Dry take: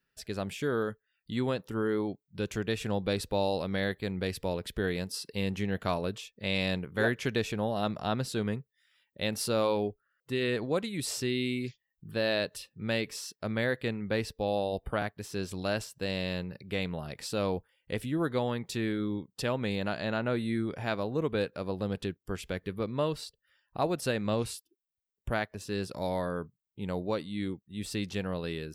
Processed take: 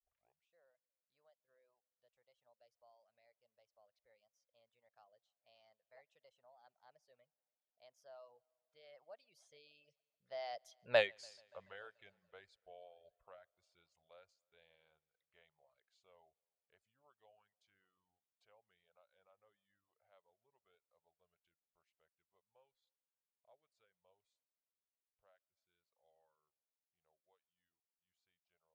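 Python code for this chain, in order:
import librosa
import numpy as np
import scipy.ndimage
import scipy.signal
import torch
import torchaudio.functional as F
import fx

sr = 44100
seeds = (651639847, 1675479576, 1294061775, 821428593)

y = fx.tape_start_head(x, sr, length_s=0.64)
y = fx.doppler_pass(y, sr, speed_mps=52, closest_m=3.4, pass_at_s=10.97)
y = scipy.signal.sosfilt(scipy.signal.butter(2, 5900.0, 'lowpass', fs=sr, output='sos'), y)
y = fx.low_shelf_res(y, sr, hz=420.0, db=-13.5, q=3.0)
y = fx.echo_heads(y, sr, ms=144, heads='first and second', feedback_pct=54, wet_db=-24)
y = fx.dereverb_blind(y, sr, rt60_s=1.1)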